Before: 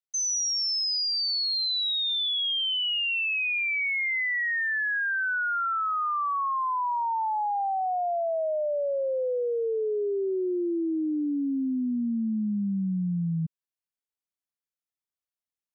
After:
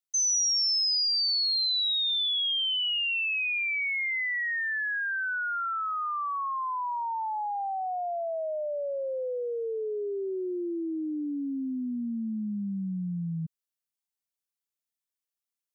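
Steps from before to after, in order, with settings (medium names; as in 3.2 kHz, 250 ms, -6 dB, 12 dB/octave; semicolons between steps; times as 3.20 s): treble shelf 3.4 kHz +8.5 dB; trim -4.5 dB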